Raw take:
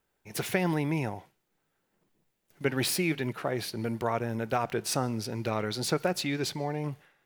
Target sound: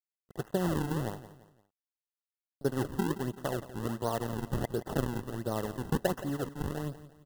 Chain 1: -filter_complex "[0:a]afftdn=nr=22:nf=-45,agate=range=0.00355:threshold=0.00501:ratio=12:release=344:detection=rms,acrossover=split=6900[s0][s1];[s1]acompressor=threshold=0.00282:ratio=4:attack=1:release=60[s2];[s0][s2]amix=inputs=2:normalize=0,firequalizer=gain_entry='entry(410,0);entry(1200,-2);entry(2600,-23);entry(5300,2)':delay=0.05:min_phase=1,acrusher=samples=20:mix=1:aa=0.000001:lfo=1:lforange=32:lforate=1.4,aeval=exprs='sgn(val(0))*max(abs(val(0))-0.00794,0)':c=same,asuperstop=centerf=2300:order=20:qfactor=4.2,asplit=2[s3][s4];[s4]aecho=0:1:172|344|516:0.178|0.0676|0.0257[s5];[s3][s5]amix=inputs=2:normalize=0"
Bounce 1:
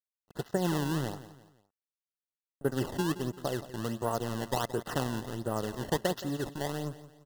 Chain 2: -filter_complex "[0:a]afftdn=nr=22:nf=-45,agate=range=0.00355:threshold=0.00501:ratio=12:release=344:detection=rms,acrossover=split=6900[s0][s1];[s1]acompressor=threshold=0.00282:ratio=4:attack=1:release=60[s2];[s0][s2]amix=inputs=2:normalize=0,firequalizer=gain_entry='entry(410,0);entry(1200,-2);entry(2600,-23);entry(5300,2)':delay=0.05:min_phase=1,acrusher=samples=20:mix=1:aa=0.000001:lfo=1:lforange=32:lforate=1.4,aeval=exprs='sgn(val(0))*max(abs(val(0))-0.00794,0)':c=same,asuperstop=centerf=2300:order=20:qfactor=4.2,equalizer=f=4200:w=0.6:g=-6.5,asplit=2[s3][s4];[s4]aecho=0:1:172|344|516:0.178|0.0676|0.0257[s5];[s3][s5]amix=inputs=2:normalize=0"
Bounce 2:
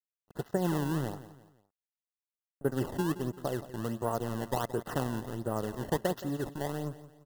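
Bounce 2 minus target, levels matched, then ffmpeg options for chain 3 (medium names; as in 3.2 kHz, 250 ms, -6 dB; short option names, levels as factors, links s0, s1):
decimation with a swept rate: distortion -6 dB
-filter_complex "[0:a]afftdn=nr=22:nf=-45,agate=range=0.00355:threshold=0.00501:ratio=12:release=344:detection=rms,acrossover=split=6900[s0][s1];[s1]acompressor=threshold=0.00282:ratio=4:attack=1:release=60[s2];[s0][s2]amix=inputs=2:normalize=0,firequalizer=gain_entry='entry(410,0);entry(1200,-2);entry(2600,-23);entry(5300,2)':delay=0.05:min_phase=1,acrusher=samples=42:mix=1:aa=0.000001:lfo=1:lforange=67.2:lforate=1.4,aeval=exprs='sgn(val(0))*max(abs(val(0))-0.00794,0)':c=same,asuperstop=centerf=2300:order=20:qfactor=4.2,equalizer=f=4200:w=0.6:g=-6.5,asplit=2[s3][s4];[s4]aecho=0:1:172|344|516:0.178|0.0676|0.0257[s5];[s3][s5]amix=inputs=2:normalize=0"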